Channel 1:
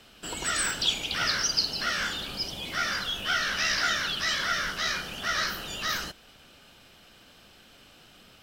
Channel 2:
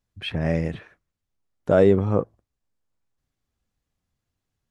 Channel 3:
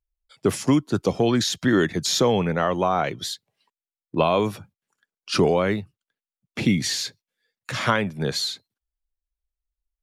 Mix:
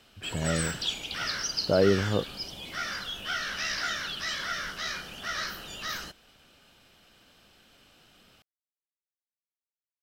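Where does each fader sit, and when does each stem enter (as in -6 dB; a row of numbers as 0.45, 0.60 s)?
-5.0 dB, -6.0 dB, off; 0.00 s, 0.00 s, off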